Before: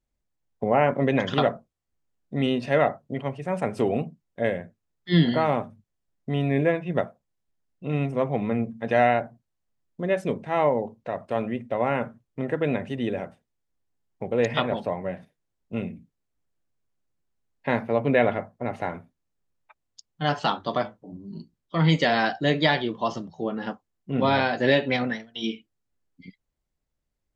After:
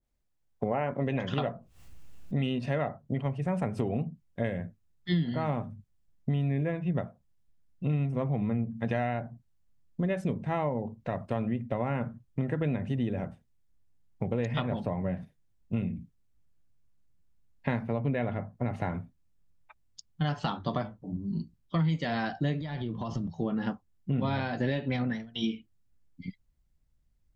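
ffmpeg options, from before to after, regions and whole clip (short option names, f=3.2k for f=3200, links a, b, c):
-filter_complex "[0:a]asettb=1/sr,asplit=3[a][b][c];[a]atrim=end=1.054[d];[b]atrim=start=1.05:end=2.59,asetpts=PTS-STARTPTS,afade=t=in:d=0.004:c=qsin,afade=t=out:st=1.536:d=0.004:c=qsin,equalizer=f=2.7k:t=o:w=0.25:g=6.5,acompressor=mode=upward:threshold=-35dB:ratio=2.5:attack=3.2:release=140:knee=2.83:detection=peak,asplit=2[e][f];[f]adelay=16,volume=-13.5dB[g];[e][g]amix=inputs=2:normalize=0,atrim=end_sample=67914[h];[c]atrim=start=2.586[i];[d][h]acrossfade=d=0.004:c1=hsin:c2=qsin[j];[j][i]acrossfade=d=0.004:c1=qsin:c2=hsin,asettb=1/sr,asplit=3[k][l][m];[k]atrim=end=22.614[n];[l]atrim=start=22.61:end=23.27,asetpts=PTS-STARTPTS,afade=t=in:d=0.004:c=qsin,afade=t=out:st=0.656:d=0.004:c=qsin,lowshelf=f=140:g=9.5,acompressor=threshold=-33dB:ratio=5:attack=3.2:release=140:knee=1:detection=peak[o];[m]atrim=start=23.266[p];[n][o]acrossfade=d=0.004:c1=hsin:c2=qsin[q];[q][p]acrossfade=d=0.004:c1=qsin:c2=hsin,asubboost=boost=3.5:cutoff=210,acompressor=threshold=-26dB:ratio=6,adynamicequalizer=threshold=0.00398:dfrequency=1500:dqfactor=0.7:tfrequency=1500:tqfactor=0.7:attack=5:release=100:ratio=0.375:range=2.5:mode=cutabove:tftype=highshelf"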